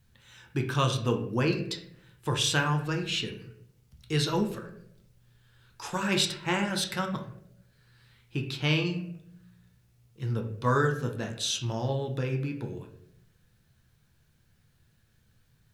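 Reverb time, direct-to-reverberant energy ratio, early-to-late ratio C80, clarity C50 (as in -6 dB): 0.80 s, 2.5 dB, 11.5 dB, 8.5 dB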